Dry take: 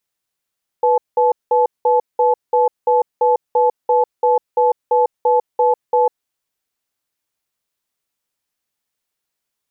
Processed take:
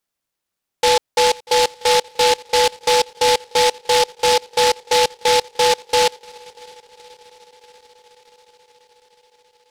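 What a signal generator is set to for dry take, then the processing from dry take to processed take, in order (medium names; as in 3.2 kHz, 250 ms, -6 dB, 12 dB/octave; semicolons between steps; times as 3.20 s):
cadence 492 Hz, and 863 Hz, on 0.15 s, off 0.19 s, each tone -13.5 dBFS 5.28 s
multi-head delay 213 ms, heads second and third, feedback 74%, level -23.5 dB; delay time shaken by noise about 3.4 kHz, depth 0.13 ms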